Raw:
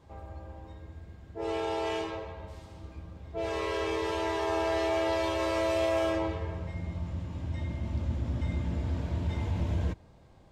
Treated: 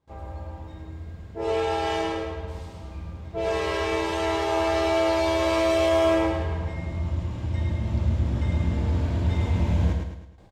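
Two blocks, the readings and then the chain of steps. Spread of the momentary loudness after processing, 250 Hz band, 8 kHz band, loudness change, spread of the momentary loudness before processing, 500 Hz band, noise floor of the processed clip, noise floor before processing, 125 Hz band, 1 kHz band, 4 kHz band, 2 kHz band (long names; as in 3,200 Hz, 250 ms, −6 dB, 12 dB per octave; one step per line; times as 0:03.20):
17 LU, +7.0 dB, +7.0 dB, +6.5 dB, 18 LU, +6.5 dB, −42 dBFS, −55 dBFS, +7.5 dB, +6.5 dB, +6.5 dB, +6.0 dB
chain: noise gate with hold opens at −46 dBFS
double-tracking delay 47 ms −12 dB
on a send: repeating echo 107 ms, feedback 44%, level −4.5 dB
on the sum: level +5 dB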